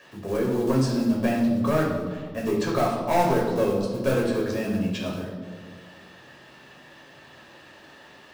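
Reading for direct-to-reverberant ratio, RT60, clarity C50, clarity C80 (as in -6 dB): -3.0 dB, 1.6 s, 3.0 dB, 5.5 dB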